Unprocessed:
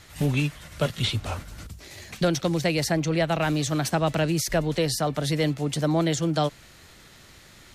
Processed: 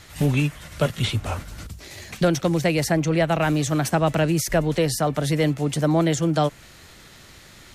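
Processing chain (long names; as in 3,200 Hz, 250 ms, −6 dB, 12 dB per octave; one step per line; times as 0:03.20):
dynamic equaliser 4,200 Hz, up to −6 dB, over −45 dBFS, Q 1.5
level +3.5 dB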